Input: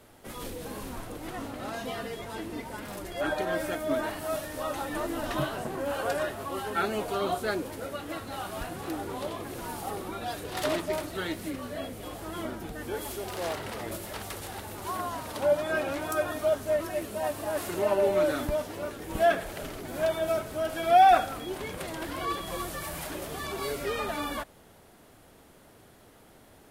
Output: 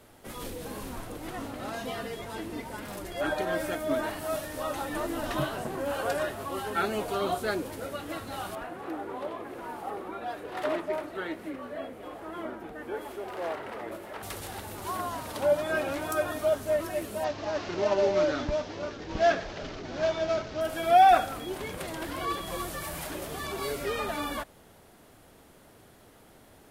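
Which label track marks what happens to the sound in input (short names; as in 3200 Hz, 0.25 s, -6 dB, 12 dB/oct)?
8.550000	14.230000	three-band isolator lows -13 dB, under 240 Hz, highs -15 dB, over 2500 Hz
17.240000	20.610000	CVSD 32 kbps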